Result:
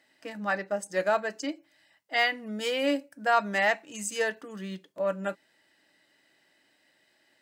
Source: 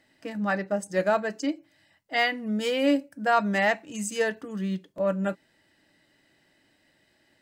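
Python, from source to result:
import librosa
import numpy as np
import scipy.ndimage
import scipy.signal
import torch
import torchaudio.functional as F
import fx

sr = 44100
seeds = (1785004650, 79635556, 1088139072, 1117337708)

y = fx.highpass(x, sr, hz=500.0, slope=6)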